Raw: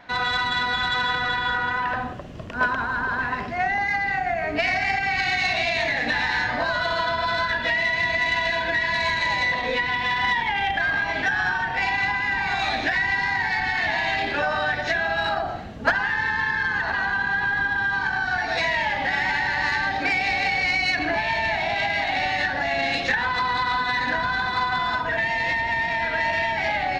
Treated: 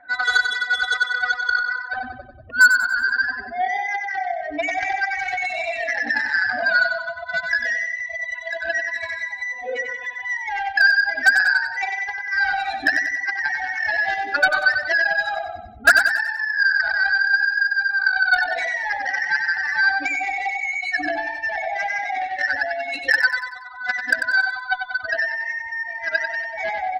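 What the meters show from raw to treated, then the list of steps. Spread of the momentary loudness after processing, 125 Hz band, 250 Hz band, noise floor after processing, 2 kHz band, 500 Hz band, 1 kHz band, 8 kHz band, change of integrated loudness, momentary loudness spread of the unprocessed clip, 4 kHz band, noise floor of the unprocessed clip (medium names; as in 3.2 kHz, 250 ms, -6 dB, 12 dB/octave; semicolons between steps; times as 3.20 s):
10 LU, under -15 dB, -7.0 dB, -35 dBFS, +4.0 dB, -1.5 dB, -2.5 dB, no reading, +2.0 dB, 3 LU, -3.0 dB, -29 dBFS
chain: spectral contrast enhancement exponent 2.5; reverb removal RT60 1.9 s; high-order bell 1.1 kHz +12 dB 1.3 oct; static phaser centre 400 Hz, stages 4; Chebyshev shaper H 3 -14 dB, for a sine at -14 dBFS; on a send: feedback delay 94 ms, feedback 45%, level -6.5 dB; on the sum: trim +6.5 dB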